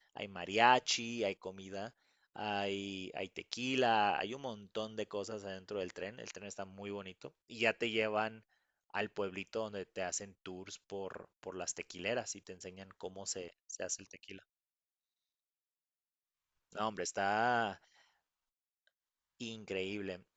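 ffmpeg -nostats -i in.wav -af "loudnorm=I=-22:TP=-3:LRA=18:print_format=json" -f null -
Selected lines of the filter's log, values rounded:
"input_i" : "-37.8",
"input_tp" : "-14.4",
"input_lra" : "6.3",
"input_thresh" : "-48.5",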